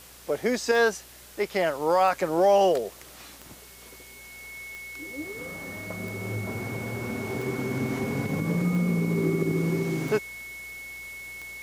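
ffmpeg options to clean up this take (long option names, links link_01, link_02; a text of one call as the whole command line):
ffmpeg -i in.wav -af "adeclick=threshold=4,bandreject=frequency=60.3:width_type=h:width=4,bandreject=frequency=120.6:width_type=h:width=4,bandreject=frequency=180.9:width_type=h:width=4,bandreject=frequency=241.2:width_type=h:width=4,bandreject=frequency=2200:width=30,afwtdn=0.004" out.wav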